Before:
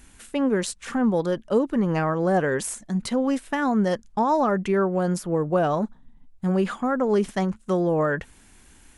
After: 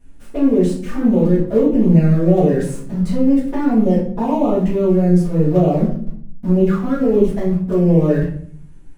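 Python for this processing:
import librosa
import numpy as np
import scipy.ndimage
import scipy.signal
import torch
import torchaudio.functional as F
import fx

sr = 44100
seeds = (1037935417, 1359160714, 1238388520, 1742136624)

p1 = fx.quant_companded(x, sr, bits=2)
p2 = x + (p1 * 10.0 ** (-4.0 / 20.0))
p3 = fx.env_flanger(p2, sr, rest_ms=11.4, full_db=-15.5)
p4 = np.clip(p3, -10.0 ** (-11.5 / 20.0), 10.0 ** (-11.5 / 20.0))
p5 = fx.tilt_shelf(p4, sr, db=8.0, hz=930.0)
p6 = fx.room_shoebox(p5, sr, seeds[0], volume_m3=73.0, walls='mixed', distance_m=1.8)
y = p6 * 10.0 ** (-9.0 / 20.0)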